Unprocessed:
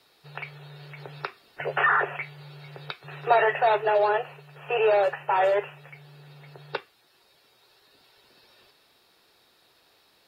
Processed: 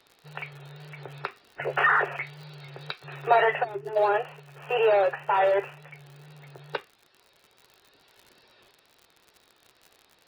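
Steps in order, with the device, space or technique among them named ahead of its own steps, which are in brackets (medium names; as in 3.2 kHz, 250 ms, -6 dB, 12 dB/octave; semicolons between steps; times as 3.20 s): 3.64–3.97 s: time-frequency box 420–4500 Hz -19 dB; lo-fi chain (low-pass 4.1 kHz 12 dB/octave; wow and flutter; crackle 72 per s -40 dBFS); 1.71–3.16 s: peaking EQ 4.6 kHz +5.5 dB 0.8 oct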